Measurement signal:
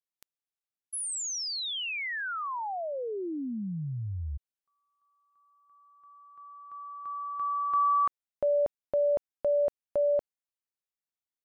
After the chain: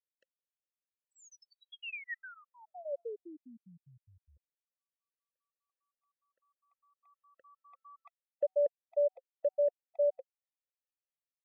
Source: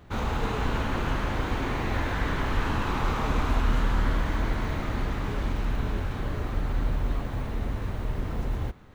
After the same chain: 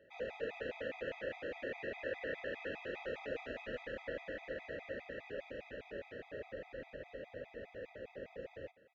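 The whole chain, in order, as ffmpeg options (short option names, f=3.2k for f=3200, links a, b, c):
-filter_complex "[0:a]aresample=16000,aresample=44100,asplit=3[a][b][c];[a]bandpass=f=530:t=q:w=8,volume=0dB[d];[b]bandpass=f=1.84k:t=q:w=8,volume=-6dB[e];[c]bandpass=f=2.48k:t=q:w=8,volume=-9dB[f];[d][e][f]amix=inputs=3:normalize=0,afftfilt=real='re*gt(sin(2*PI*4.9*pts/sr)*(1-2*mod(floor(b*sr/1024/650),2)),0)':imag='im*gt(sin(2*PI*4.9*pts/sr)*(1-2*mod(floor(b*sr/1024/650),2)),0)':win_size=1024:overlap=0.75,volume=4dB"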